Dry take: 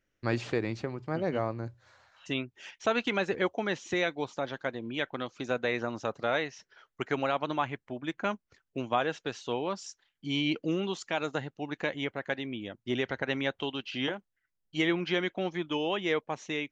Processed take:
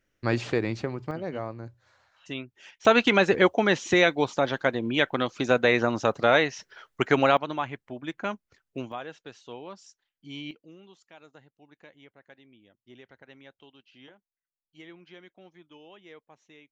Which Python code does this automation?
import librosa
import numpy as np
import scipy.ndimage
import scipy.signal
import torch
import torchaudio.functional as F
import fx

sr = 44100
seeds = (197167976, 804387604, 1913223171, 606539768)

y = fx.gain(x, sr, db=fx.steps((0.0, 4.0), (1.11, -3.0), (2.85, 9.0), (7.37, 0.0), (8.92, -9.0), (10.51, -20.0)))